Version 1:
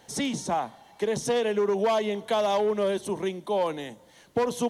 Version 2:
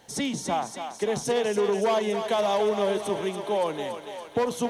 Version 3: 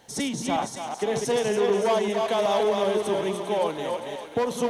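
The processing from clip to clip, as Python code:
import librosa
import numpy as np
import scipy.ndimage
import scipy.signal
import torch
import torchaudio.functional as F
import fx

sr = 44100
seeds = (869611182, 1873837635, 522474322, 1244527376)

y1 = fx.echo_thinned(x, sr, ms=283, feedback_pct=70, hz=420.0, wet_db=-7.0)
y2 = fx.reverse_delay(y1, sr, ms=189, wet_db=-4.5)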